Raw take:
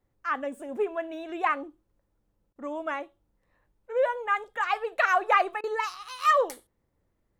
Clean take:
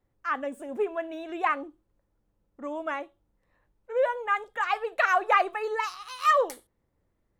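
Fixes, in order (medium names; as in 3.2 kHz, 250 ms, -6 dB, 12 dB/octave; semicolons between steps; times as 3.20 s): interpolate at 2.53/5.61 s, 26 ms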